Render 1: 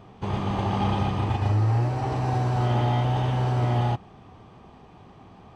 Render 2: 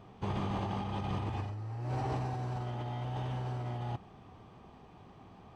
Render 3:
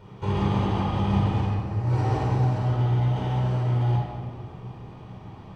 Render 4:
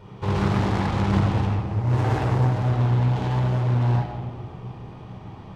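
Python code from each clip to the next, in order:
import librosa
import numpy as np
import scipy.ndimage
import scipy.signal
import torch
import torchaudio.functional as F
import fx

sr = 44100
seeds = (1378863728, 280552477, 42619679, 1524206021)

y1 = fx.over_compress(x, sr, threshold_db=-27.0, ratio=-1.0)
y1 = F.gain(torch.from_numpy(y1), -9.0).numpy()
y2 = fx.room_shoebox(y1, sr, seeds[0], volume_m3=2500.0, walls='mixed', distance_m=4.6)
y2 = F.gain(torch.from_numpy(y2), 2.0).numpy()
y3 = fx.self_delay(y2, sr, depth_ms=0.62)
y3 = F.gain(torch.from_numpy(y3), 2.5).numpy()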